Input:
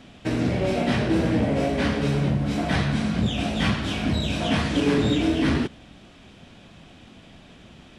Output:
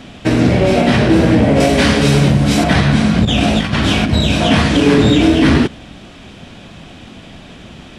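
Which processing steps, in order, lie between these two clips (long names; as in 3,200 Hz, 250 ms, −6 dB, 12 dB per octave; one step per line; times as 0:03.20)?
0:01.60–0:02.64: high-shelf EQ 3,600 Hz +10.5 dB
0:03.25–0:04.13: compressor whose output falls as the input rises −25 dBFS, ratio −0.5
boost into a limiter +13 dB
level −1 dB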